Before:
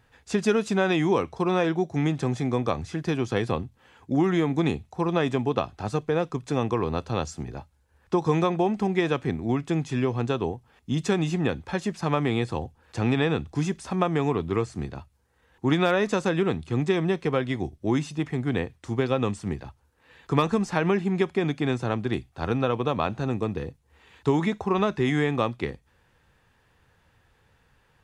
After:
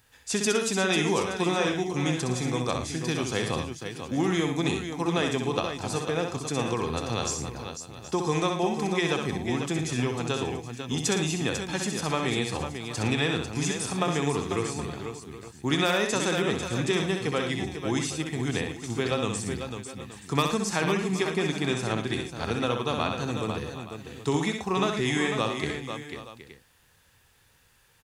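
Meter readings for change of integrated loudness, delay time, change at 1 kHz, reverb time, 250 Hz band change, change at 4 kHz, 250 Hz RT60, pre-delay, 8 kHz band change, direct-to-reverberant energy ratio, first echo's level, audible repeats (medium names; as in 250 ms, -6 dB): -2.0 dB, 64 ms, -1.5 dB, no reverb, -3.0 dB, +6.0 dB, no reverb, no reverb, +11.5 dB, no reverb, -5.5 dB, 5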